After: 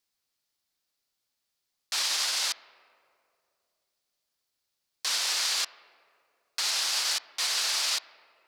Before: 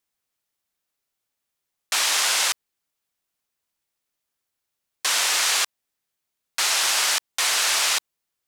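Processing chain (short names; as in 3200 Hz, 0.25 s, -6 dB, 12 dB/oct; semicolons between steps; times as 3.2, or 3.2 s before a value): bell 4600 Hz +8.5 dB 0.79 oct; limiter -18.5 dBFS, peak gain reduction 13 dB; on a send at -11.5 dB: air absorption 260 m + reverb RT60 2.6 s, pre-delay 3 ms; on the sum: upward expander 1.5:1, over -32 dBFS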